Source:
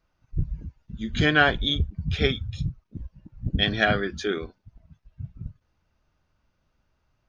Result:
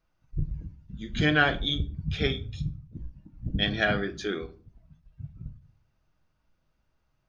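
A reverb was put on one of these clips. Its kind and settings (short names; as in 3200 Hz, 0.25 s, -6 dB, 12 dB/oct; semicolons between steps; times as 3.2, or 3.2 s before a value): shoebox room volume 280 m³, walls furnished, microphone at 0.62 m; gain -4 dB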